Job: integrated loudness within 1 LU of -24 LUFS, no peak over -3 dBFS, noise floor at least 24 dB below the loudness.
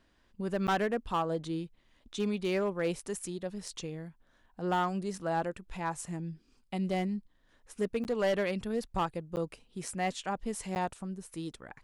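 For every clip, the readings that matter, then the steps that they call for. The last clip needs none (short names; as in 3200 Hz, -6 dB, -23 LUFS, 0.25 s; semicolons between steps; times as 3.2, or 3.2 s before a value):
clipped 0.9%; flat tops at -23.5 dBFS; dropouts 4; longest dropout 9.5 ms; loudness -34.5 LUFS; peak -23.5 dBFS; loudness target -24.0 LUFS
-> clip repair -23.5 dBFS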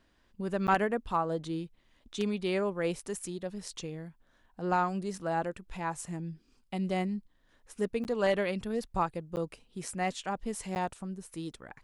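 clipped 0.0%; dropouts 4; longest dropout 9.5 ms
-> interpolate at 0.67/8.04/9.36/10.75, 9.5 ms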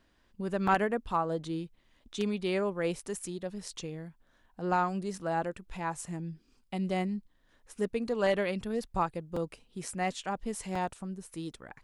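dropouts 0; loudness -33.5 LUFS; peak -14.5 dBFS; loudness target -24.0 LUFS
-> gain +9.5 dB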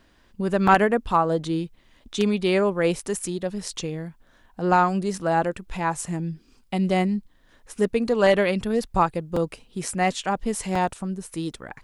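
loudness -24.0 LUFS; peak -5.0 dBFS; noise floor -59 dBFS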